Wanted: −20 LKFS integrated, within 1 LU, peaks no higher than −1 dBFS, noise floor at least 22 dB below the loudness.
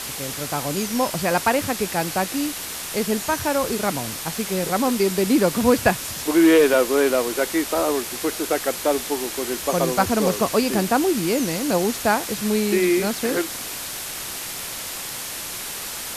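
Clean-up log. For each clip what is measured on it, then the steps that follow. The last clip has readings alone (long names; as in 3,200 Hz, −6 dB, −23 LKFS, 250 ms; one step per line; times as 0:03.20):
background noise floor −32 dBFS; target noise floor −44 dBFS; integrated loudness −22.0 LKFS; sample peak −3.0 dBFS; target loudness −20.0 LKFS
→ broadband denoise 12 dB, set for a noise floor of −32 dBFS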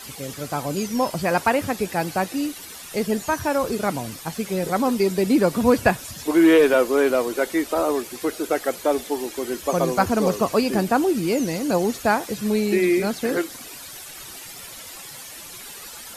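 background noise floor −39 dBFS; target noise floor −44 dBFS
→ broadband denoise 6 dB, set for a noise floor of −39 dBFS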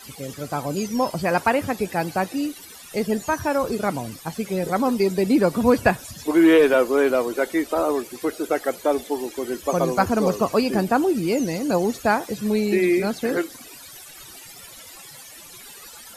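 background noise floor −43 dBFS; target noise floor −44 dBFS
→ broadband denoise 6 dB, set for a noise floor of −43 dBFS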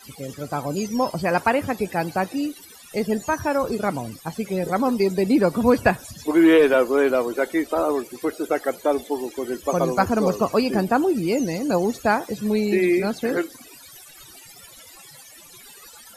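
background noise floor −46 dBFS; integrated loudness −22.0 LKFS; sample peak −4.0 dBFS; target loudness −20.0 LKFS
→ level +2 dB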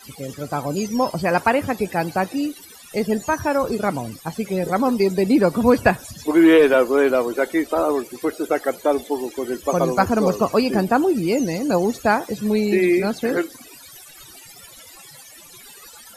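integrated loudness −20.0 LKFS; sample peak −2.0 dBFS; background noise floor −44 dBFS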